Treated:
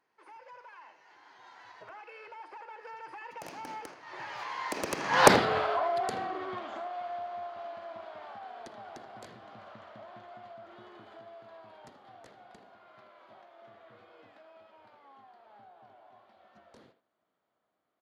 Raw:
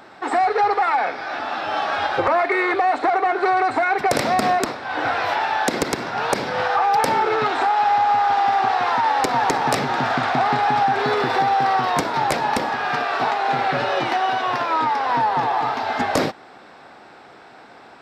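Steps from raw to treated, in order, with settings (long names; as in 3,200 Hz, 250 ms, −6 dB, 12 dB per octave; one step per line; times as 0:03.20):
source passing by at 0:05.28, 58 m/s, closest 4.6 metres
far-end echo of a speakerphone 80 ms, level −10 dB
level +4 dB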